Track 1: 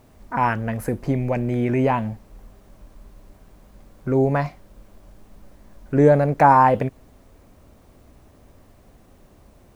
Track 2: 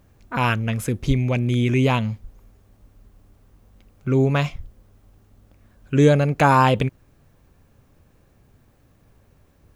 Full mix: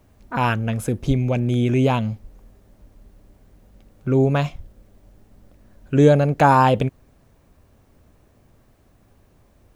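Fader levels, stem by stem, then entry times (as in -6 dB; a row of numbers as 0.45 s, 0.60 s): -7.5 dB, -2.5 dB; 0.00 s, 0.00 s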